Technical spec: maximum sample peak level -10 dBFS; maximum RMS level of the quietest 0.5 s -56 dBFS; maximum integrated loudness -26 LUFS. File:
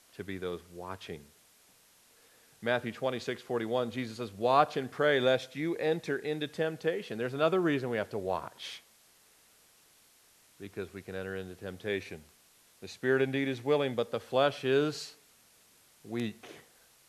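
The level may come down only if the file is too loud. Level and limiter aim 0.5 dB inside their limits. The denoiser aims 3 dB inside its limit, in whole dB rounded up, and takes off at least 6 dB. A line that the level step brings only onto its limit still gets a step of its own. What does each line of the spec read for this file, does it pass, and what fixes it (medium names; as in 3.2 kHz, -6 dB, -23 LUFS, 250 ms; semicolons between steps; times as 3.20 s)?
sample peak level -11.0 dBFS: pass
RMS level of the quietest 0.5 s -63 dBFS: pass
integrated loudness -32.0 LUFS: pass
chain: none needed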